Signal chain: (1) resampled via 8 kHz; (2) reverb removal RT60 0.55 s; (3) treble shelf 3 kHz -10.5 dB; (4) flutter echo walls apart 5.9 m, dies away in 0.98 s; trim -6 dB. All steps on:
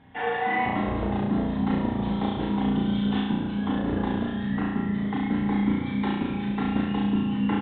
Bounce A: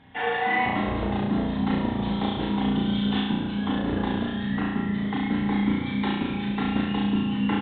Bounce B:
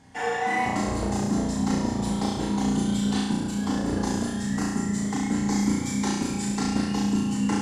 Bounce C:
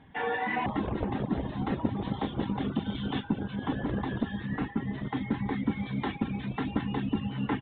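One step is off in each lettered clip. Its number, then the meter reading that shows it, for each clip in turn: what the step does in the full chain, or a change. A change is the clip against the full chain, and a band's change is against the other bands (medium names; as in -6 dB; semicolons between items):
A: 3, 4 kHz band +5.5 dB; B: 1, 4 kHz band +4.0 dB; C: 4, echo-to-direct 2.0 dB to none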